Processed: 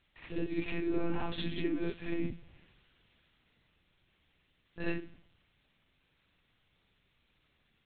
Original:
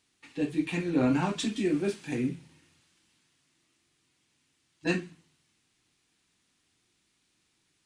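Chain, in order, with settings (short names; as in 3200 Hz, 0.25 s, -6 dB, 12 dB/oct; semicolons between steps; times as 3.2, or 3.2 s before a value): compressor 2:1, threshold -38 dBFS, peak gain reduction 9.5 dB; monotone LPC vocoder at 8 kHz 170 Hz; reverse echo 62 ms -5.5 dB; gain +1.5 dB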